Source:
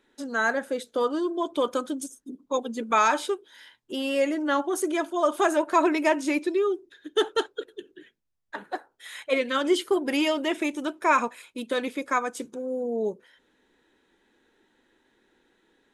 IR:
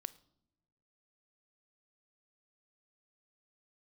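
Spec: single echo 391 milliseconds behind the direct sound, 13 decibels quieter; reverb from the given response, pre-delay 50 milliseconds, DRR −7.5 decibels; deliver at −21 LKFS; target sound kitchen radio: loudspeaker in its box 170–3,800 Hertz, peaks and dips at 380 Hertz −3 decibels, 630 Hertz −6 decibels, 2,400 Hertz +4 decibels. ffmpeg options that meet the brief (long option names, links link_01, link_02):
-filter_complex "[0:a]aecho=1:1:391:0.224,asplit=2[link_01][link_02];[1:a]atrim=start_sample=2205,adelay=50[link_03];[link_02][link_03]afir=irnorm=-1:irlink=0,volume=11dB[link_04];[link_01][link_04]amix=inputs=2:normalize=0,highpass=170,equalizer=frequency=380:width_type=q:width=4:gain=-3,equalizer=frequency=630:width_type=q:width=4:gain=-6,equalizer=frequency=2400:width_type=q:width=4:gain=4,lowpass=frequency=3800:width=0.5412,lowpass=frequency=3800:width=1.3066,volume=-1.5dB"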